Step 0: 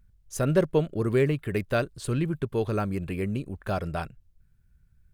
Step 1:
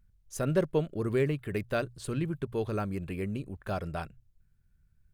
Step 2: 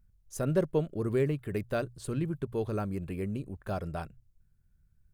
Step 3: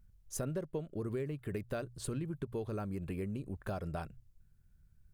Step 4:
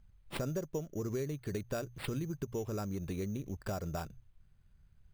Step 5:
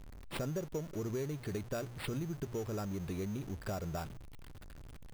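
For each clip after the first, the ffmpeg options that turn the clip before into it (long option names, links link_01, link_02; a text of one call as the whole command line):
ffmpeg -i in.wav -af "bandreject=frequency=60:width_type=h:width=6,bandreject=frequency=120:width_type=h:width=6,volume=-4.5dB" out.wav
ffmpeg -i in.wav -af "equalizer=frequency=2600:width=0.59:gain=-5" out.wav
ffmpeg -i in.wav -af "acompressor=threshold=-37dB:ratio=6,volume=2dB" out.wav
ffmpeg -i in.wav -af "acrusher=samples=7:mix=1:aa=0.000001,volume=1dB" out.wav
ffmpeg -i in.wav -af "aeval=exprs='val(0)+0.5*0.0075*sgn(val(0))':channel_layout=same,volume=-2.5dB" out.wav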